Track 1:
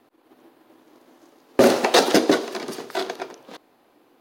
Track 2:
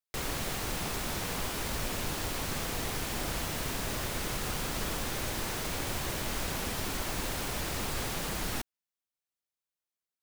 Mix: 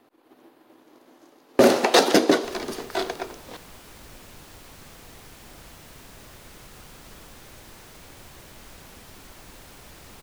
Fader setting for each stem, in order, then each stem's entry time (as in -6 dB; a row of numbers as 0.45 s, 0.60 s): -0.5 dB, -12.0 dB; 0.00 s, 2.30 s